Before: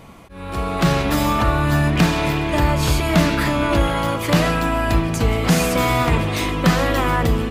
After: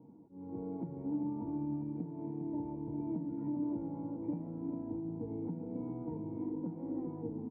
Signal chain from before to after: HPF 120 Hz 24 dB/oct; tilt -3 dB/oct; compressor, threshold -19 dBFS, peak gain reduction 14.5 dB; vocal tract filter u; resonator 470 Hz, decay 0.27 s, harmonics all, mix 90%; echo 0.402 s -8.5 dB; gain +8 dB

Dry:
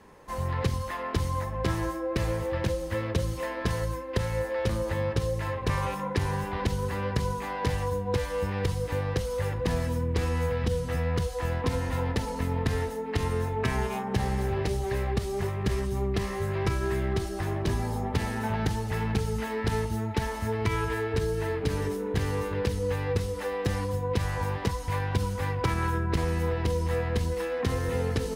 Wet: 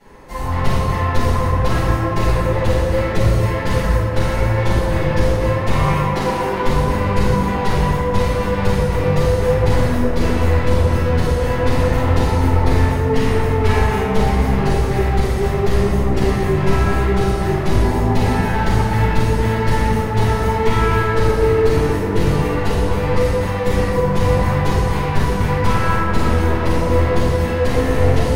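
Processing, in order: one-sided fold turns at -25 dBFS; 6.04–6.65 resonant low shelf 210 Hz -12.5 dB, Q 1.5; tape echo 0.119 s, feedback 83%, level -4 dB, low-pass 3200 Hz; shoebox room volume 330 m³, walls mixed, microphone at 7.2 m; gain -5.5 dB

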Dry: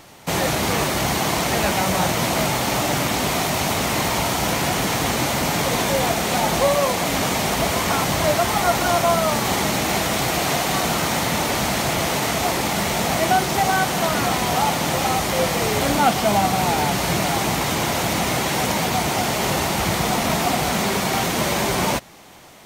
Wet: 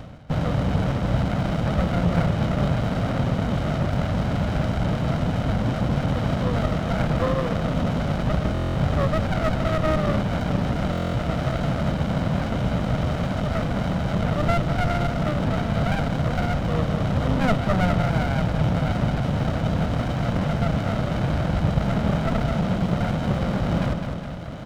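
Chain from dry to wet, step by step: Butterworth band-stop 1900 Hz, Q 0.69; tape spacing loss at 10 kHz 38 dB; comb 1.2 ms, depth 94%; on a send: feedback echo 0.19 s, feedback 34%, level -11 dB; on the sum: speed mistake 48 kHz file played as 44.1 kHz; band shelf 2200 Hz +10.5 dB 1.2 oct; reverse; upward compressor, threshold -19 dBFS; reverse; stuck buffer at 8.53/10.91, samples 1024, times 9; running maximum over 33 samples

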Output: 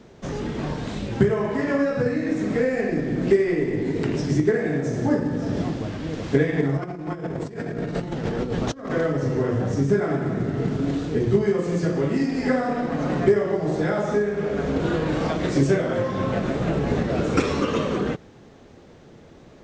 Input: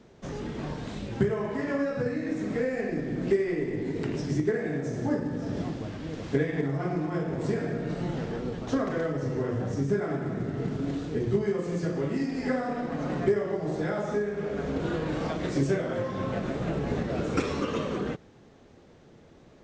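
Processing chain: 6.77–8.91 negative-ratio compressor -34 dBFS, ratio -0.5; gain +6.5 dB

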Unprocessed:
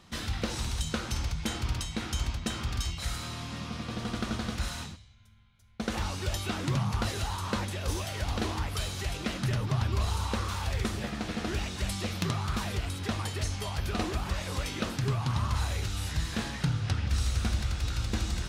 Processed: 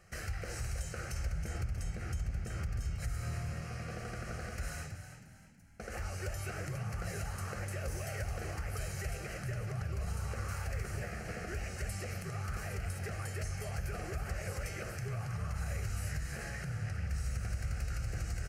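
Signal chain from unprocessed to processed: 1.26–3.61 low shelf 360 Hz +9 dB; compressor 4:1, threshold -30 dBFS, peak gain reduction 11.5 dB; limiter -25.5 dBFS, peak gain reduction 9 dB; fixed phaser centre 970 Hz, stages 6; frequency-shifting echo 0.321 s, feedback 38%, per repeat +41 Hz, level -10 dB; gain -1 dB

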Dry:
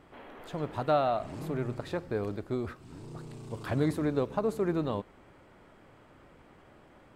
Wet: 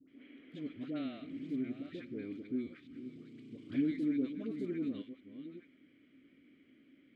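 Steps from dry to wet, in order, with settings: reverse delay 0.466 s, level -11 dB; vowel filter i; dispersion highs, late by 83 ms, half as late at 870 Hz; gain +4.5 dB

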